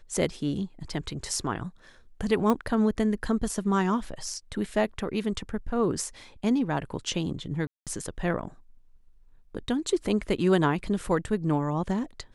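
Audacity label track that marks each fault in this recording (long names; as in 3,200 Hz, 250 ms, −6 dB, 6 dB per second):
2.500000	2.500000	click −13 dBFS
7.670000	7.870000	drop-out 197 ms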